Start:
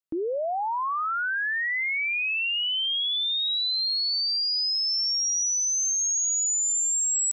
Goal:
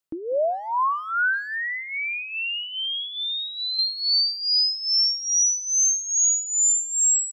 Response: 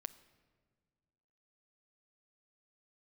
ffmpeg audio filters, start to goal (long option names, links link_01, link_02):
-filter_complex "[0:a]tremolo=f=2.4:d=0.82,asettb=1/sr,asplit=3[link_01][link_02][link_03];[link_01]atrim=end=1.454[link_04];[link_02]atrim=start=1.45:end=3.79,asetpts=PTS-STARTPTS,afade=type=in:duration=0.004:curve=qsin,afade=type=out:start_time=2.336:duration=0.004:curve=qsin,acompressor=threshold=-34dB:ratio=6[link_05];[link_03]atrim=start=3.786[link_06];[link_04][link_05]acrossfade=duration=0.004:curve1=hsin:curve2=qsin[link_07];[link_07][link_06]acrossfade=duration=0.004:curve1=qsin:curve2=hsin,asplit=2[link_08][link_09];[link_09]adelay=190,highpass=300,lowpass=3400,asoftclip=type=hard:threshold=-31dB,volume=-20dB[link_10];[link_08][link_10]amix=inputs=2:normalize=0,volume=7dB"